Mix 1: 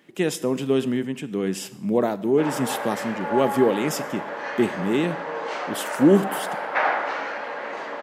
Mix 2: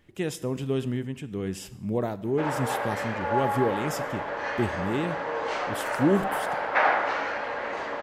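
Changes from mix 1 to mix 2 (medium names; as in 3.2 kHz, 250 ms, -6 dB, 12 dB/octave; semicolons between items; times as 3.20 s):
speech -7.0 dB; master: remove high-pass 170 Hz 24 dB/octave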